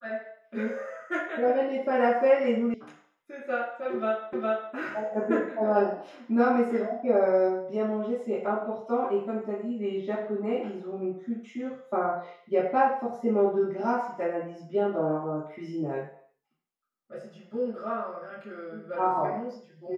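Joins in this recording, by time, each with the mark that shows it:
0:02.74: cut off before it has died away
0:04.33: the same again, the last 0.41 s

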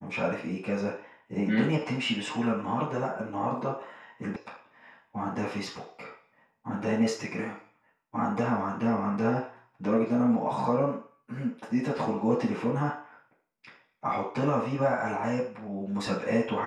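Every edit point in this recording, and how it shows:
0:04.36: cut off before it has died away

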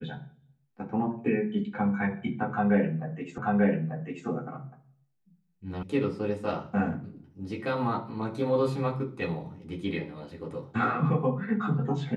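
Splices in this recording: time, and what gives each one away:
0:03.38: the same again, the last 0.89 s
0:05.83: cut off before it has died away

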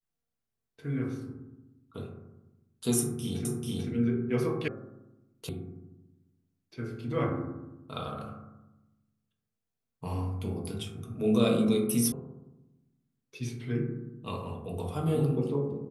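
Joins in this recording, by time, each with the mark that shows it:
0:03.45: the same again, the last 0.44 s
0:04.68: cut off before it has died away
0:05.49: cut off before it has died away
0:12.12: cut off before it has died away

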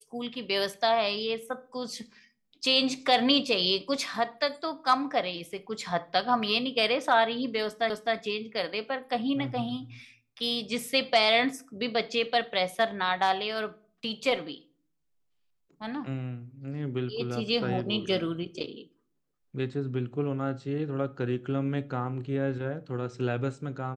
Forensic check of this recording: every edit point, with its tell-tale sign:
0:07.90: the same again, the last 0.26 s

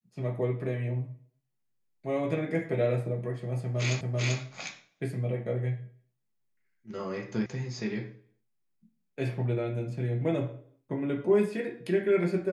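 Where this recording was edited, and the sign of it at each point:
0:04.01: the same again, the last 0.39 s
0:07.46: cut off before it has died away

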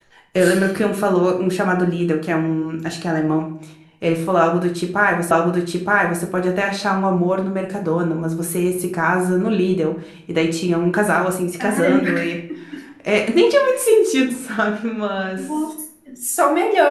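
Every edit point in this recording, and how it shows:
0:05.31: the same again, the last 0.92 s

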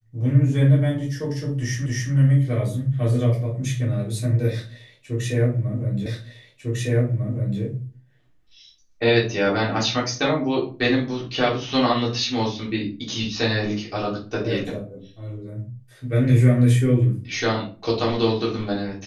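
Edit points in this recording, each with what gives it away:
0:01.86: the same again, the last 0.27 s
0:06.06: the same again, the last 1.55 s

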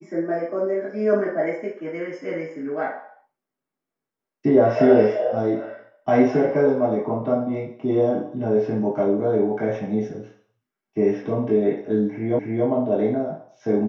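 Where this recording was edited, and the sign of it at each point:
0:12.39: the same again, the last 0.28 s

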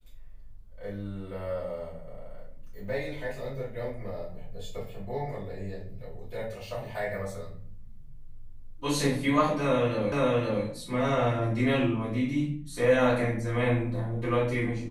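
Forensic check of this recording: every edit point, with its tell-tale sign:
0:10.12: the same again, the last 0.52 s

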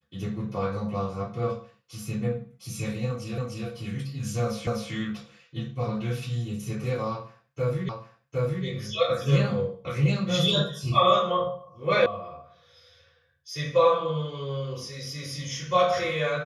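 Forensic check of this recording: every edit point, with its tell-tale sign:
0:03.38: the same again, the last 0.3 s
0:04.67: the same again, the last 0.25 s
0:07.89: the same again, the last 0.76 s
0:12.06: cut off before it has died away

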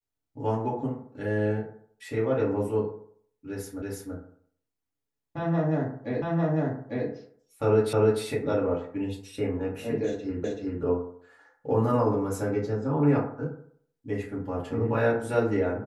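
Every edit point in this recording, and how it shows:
0:03.82: the same again, the last 0.33 s
0:06.22: the same again, the last 0.85 s
0:07.93: the same again, the last 0.3 s
0:10.44: the same again, the last 0.38 s

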